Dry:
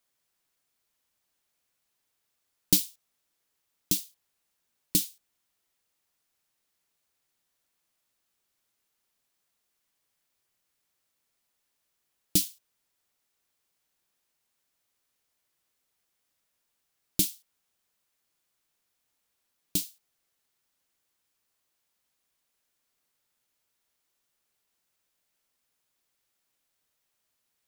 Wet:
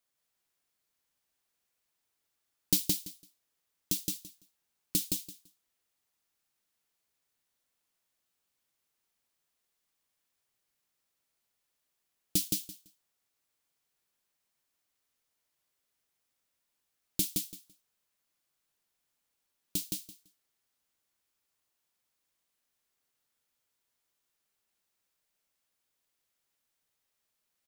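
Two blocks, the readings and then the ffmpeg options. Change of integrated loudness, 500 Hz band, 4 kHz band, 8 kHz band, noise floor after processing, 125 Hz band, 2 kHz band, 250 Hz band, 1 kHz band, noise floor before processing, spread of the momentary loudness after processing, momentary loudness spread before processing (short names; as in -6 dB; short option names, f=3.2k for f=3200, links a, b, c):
-4.5 dB, -3.0 dB, -3.0 dB, -3.0 dB, -82 dBFS, -3.0 dB, -3.0 dB, -3.0 dB, n/a, -79 dBFS, 18 LU, 13 LU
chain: -af "aecho=1:1:168|336|504:0.708|0.12|0.0205,volume=-5dB"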